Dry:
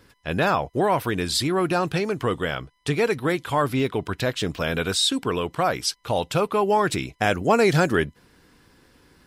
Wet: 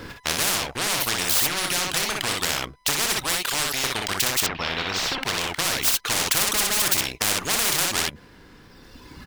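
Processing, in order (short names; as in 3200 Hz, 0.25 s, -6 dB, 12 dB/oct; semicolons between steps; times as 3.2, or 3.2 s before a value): median filter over 5 samples; reverb removal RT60 1.8 s; 3.18–3.84 HPF 690 Hz 12 dB/oct; 6.04–6.82 bell 1200 Hz +14 dB 1.7 oct; sample leveller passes 1; hard clip -16 dBFS, distortion -6 dB; 4.4–5.2 air absorption 270 m; on a send: loudspeakers at several distances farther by 10 m -9 dB, 21 m -6 dB; on the sum: spectral compressor 10:1; gain +7.5 dB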